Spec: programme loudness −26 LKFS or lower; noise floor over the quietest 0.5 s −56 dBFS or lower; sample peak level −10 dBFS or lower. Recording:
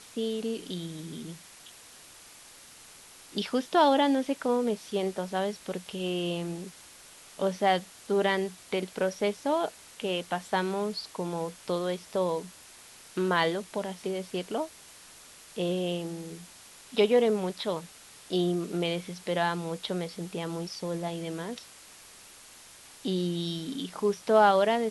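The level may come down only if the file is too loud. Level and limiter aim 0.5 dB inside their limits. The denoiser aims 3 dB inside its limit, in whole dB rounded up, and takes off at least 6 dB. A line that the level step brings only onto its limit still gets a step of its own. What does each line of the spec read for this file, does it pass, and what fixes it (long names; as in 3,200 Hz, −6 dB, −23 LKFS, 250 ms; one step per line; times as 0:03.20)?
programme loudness −30.0 LKFS: in spec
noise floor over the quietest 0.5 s −51 dBFS: out of spec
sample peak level −9.0 dBFS: out of spec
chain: broadband denoise 8 dB, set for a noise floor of −51 dBFS
brickwall limiter −10.5 dBFS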